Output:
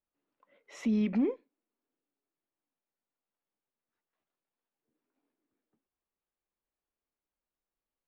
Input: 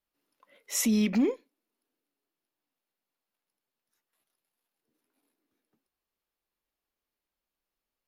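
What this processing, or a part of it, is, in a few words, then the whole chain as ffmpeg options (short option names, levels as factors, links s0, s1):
phone in a pocket: -af "lowpass=3200,highshelf=f=2100:g=-8,volume=0.708"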